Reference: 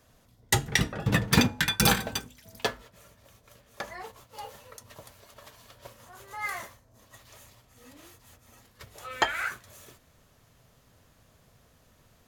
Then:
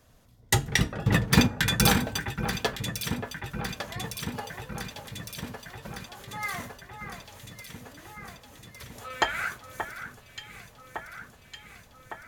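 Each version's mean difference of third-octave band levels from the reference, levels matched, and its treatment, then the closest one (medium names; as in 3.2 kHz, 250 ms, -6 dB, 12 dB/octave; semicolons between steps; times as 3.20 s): 6.5 dB: bass shelf 140 Hz +4.5 dB; on a send: echo whose repeats swap between lows and highs 579 ms, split 2.2 kHz, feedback 82%, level -8 dB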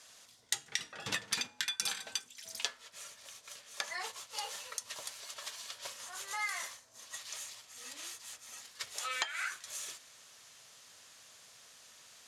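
10.5 dB: frequency weighting ITU-R 468; compression 6:1, threshold -35 dBFS, peak gain reduction 22.5 dB; trim +1 dB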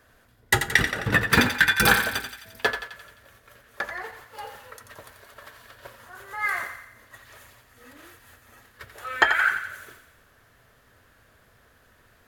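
4.5 dB: fifteen-band graphic EQ 160 Hz -6 dB, 400 Hz +3 dB, 1.6 kHz +11 dB, 6.3 kHz -5 dB; on a send: thinning echo 87 ms, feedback 58%, high-pass 770 Hz, level -7.5 dB; on the sum: trim +1 dB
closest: third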